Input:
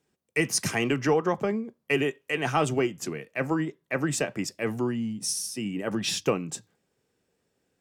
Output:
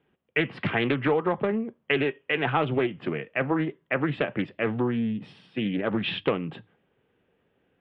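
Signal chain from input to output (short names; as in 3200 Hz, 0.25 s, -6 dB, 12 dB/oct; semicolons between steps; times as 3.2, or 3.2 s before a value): elliptic low-pass 3200 Hz, stop band 50 dB; compressor 2:1, threshold -31 dBFS, peak gain reduction 7 dB; Doppler distortion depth 0.29 ms; gain +6.5 dB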